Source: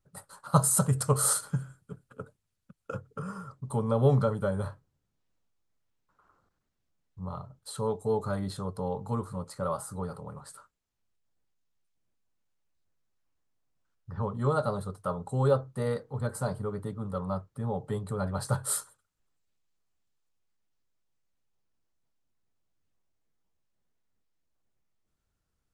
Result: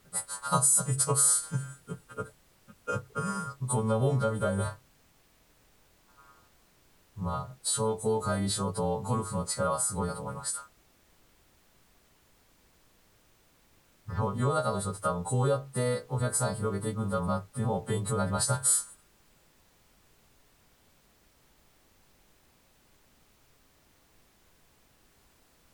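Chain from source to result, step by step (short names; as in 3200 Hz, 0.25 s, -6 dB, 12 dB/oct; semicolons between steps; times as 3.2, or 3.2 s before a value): frequency quantiser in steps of 2 st; compressor 3:1, threshold -32 dBFS, peak gain reduction 14.5 dB; added noise pink -70 dBFS; gain +6 dB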